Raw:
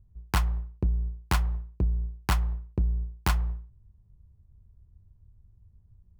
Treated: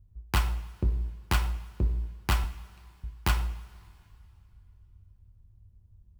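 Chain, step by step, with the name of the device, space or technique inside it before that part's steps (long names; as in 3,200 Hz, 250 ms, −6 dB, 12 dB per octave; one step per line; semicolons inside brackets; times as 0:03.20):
0:02.44–0:03.04: Butterworth high-pass 2,400 Hz
presence and air boost (parametric band 2,900 Hz +3.5 dB 0.77 octaves; high-shelf EQ 12,000 Hz +2.5 dB)
coupled-rooms reverb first 0.51 s, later 2.7 s, from −18 dB, DRR 4.5 dB
level −2 dB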